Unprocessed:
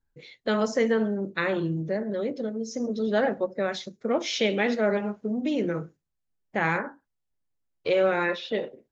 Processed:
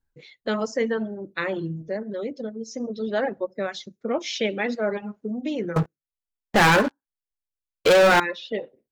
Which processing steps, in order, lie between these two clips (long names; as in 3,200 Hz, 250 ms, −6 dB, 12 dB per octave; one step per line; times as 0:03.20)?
reverb reduction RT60 1 s
0:05.76–0:08.20: leveller curve on the samples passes 5